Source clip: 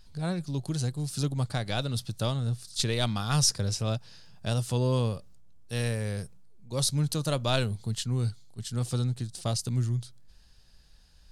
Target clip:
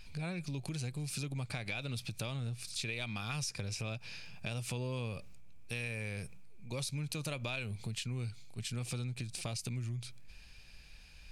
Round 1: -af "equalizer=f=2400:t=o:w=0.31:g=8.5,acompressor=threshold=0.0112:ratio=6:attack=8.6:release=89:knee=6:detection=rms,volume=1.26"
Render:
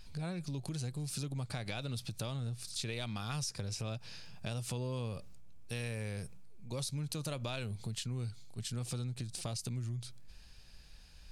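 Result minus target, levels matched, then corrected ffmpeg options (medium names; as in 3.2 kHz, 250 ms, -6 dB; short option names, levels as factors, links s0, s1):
2 kHz band -5.5 dB
-af "equalizer=f=2400:t=o:w=0.31:g=20.5,acompressor=threshold=0.0112:ratio=6:attack=8.6:release=89:knee=6:detection=rms,volume=1.26"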